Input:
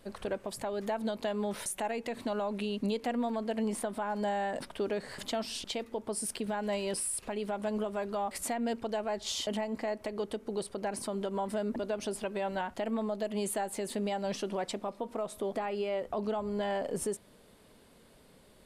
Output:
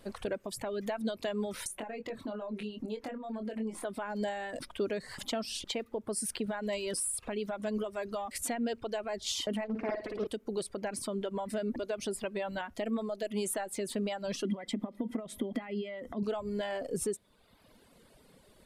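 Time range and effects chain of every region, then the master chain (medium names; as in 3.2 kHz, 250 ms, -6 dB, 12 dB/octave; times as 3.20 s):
1.67–3.85 s: treble shelf 2.8 kHz -8.5 dB + compression 5:1, threshold -35 dBFS + doubling 23 ms -5.5 dB
9.64–10.27 s: low-pass 2.3 kHz 6 dB/octave + flutter echo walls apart 9.5 m, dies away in 1.1 s + loudspeaker Doppler distortion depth 0.45 ms
14.45–16.23 s: compression 5:1, threshold -40 dBFS + small resonant body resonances 230/2000/3200 Hz, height 16 dB, ringing for 35 ms
whole clip: dynamic bell 860 Hz, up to -7 dB, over -49 dBFS, Q 2.2; reverb removal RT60 1.1 s; trim +1.5 dB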